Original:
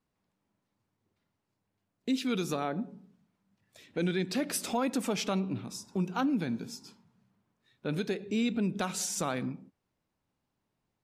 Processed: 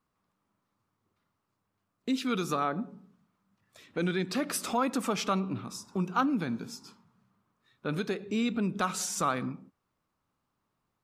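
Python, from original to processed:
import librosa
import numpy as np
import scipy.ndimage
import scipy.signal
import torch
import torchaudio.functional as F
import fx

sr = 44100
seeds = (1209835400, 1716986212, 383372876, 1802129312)

y = fx.peak_eq(x, sr, hz=1200.0, db=10.5, octaves=0.5)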